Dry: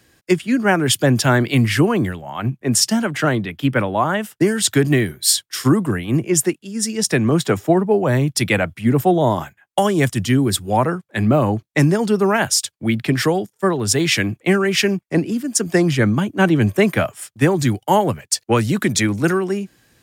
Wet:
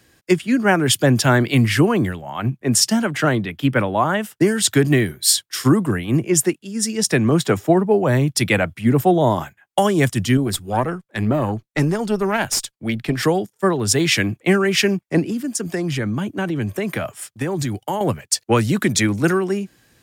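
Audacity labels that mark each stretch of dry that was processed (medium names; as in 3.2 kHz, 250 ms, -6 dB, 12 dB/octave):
10.370000	13.230000	valve stage drive 6 dB, bias 0.7
15.220000	18.010000	compression, threshold -19 dBFS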